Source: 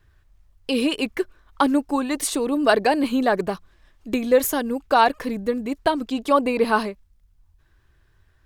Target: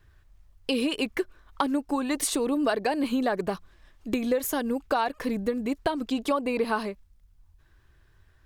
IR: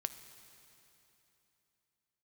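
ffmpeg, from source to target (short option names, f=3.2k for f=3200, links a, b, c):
-af "acompressor=threshold=-23dB:ratio=5"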